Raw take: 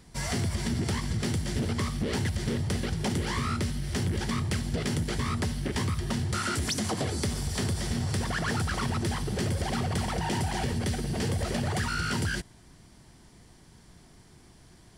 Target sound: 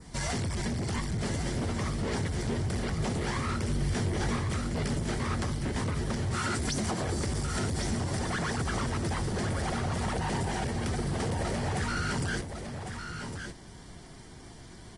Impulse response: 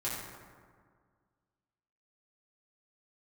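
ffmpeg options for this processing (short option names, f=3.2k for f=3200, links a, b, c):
-filter_complex "[0:a]asettb=1/sr,asplit=3[a][b][c];[a]atrim=end=8.014[d];[b]atrim=start=8.01:end=8.61,asetpts=PTS-STARTPTS,afade=t=in:d=0.004:c=qsin,afade=t=out:st=0.596:d=0.004:c=qsin,bandreject=f=50:t=h:w=6,bandreject=f=100:t=h:w=6,bandreject=f=150:t=h:w=6,bandreject=f=200:t=h:w=6,bandreject=f=250:t=h:w=6,bandreject=f=300:t=h:w=6,bandreject=f=350:t=h:w=6[e];[c]atrim=start=8.606[f];[d][e]acrossfade=d=0.004:c1=hsin:c2=qsin[g];[g][f]acrossfade=d=0.004:c1=qsin:c2=hsin,adynamicequalizer=threshold=0.00251:dfrequency=3300:dqfactor=1.4:tfrequency=3300:tqfactor=1.4:attack=5:release=100:ratio=0.375:range=2.5:mode=cutabove:tftype=bell,bandreject=f=2.6k:w=18,asplit=2[h][i];[i]acompressor=threshold=-39dB:ratio=5,volume=-2.5dB[j];[h][j]amix=inputs=2:normalize=0,alimiter=limit=-21.5dB:level=0:latency=1:release=43,asoftclip=type=hard:threshold=-29dB,asettb=1/sr,asplit=3[k][l][m];[k]atrim=end=3.654[n];[l]atrim=start=3.65:end=4.36,asetpts=PTS-STARTPTS,afade=t=in:d=0.004:c=qsin,afade=t=out:st=0.706:d=0.004:c=qsin,asplit=2[o][p];[p]adelay=21,volume=-4dB[q];[o][q]amix=inputs=2:normalize=0,atrim=end_sample=31311[r];[m]atrim=start=4.356[s];[n][r]acrossfade=d=0.004:c1=hsin:c2=qsin[t];[t][s]acrossfade=d=0.004:c1=qsin:c2=hsin,asplit=2[u][v];[v]aecho=0:1:1105:0.422[w];[u][w]amix=inputs=2:normalize=0,aresample=22050,aresample=44100" -ar 48000 -c:a aac -b:a 32k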